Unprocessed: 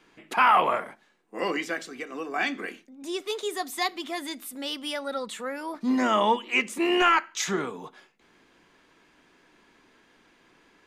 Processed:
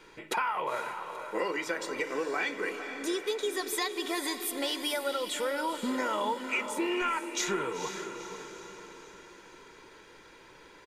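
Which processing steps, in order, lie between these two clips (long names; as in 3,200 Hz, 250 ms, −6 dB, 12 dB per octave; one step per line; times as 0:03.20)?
notch filter 2,900 Hz, Q 18
comb filter 2.1 ms, depth 57%
downward compressor 8 to 1, threshold −34 dBFS, peak gain reduction 20 dB
feedback delay with all-pass diffusion 478 ms, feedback 50%, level −8 dB
level +5 dB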